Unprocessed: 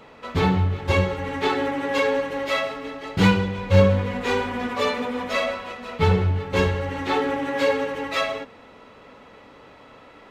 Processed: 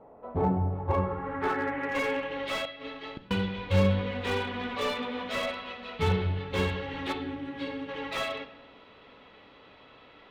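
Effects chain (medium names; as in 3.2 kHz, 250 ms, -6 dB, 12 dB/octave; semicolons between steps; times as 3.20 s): 7.12–7.89 s: time-frequency box 380–8200 Hz -10 dB; low-pass sweep 730 Hz -> 3.6 kHz, 0.62–2.49 s; 2.65–3.31 s: inverted gate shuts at -18 dBFS, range -39 dB; on a send at -10 dB: reverberation RT60 1.0 s, pre-delay 3 ms; on the sum: slew-rate limiter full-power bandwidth 170 Hz; trim -8 dB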